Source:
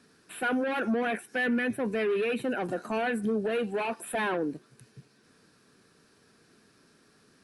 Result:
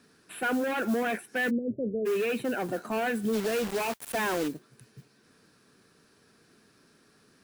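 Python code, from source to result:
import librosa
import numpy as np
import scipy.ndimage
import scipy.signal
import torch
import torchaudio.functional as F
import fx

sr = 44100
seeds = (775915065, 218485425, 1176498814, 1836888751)

y = fx.quant_dither(x, sr, seeds[0], bits=6, dither='none', at=(3.32, 4.47), fade=0.02)
y = fx.mod_noise(y, sr, seeds[1], snr_db=21)
y = fx.cheby1_lowpass(y, sr, hz=610.0, order=6, at=(1.49, 2.05), fade=0.02)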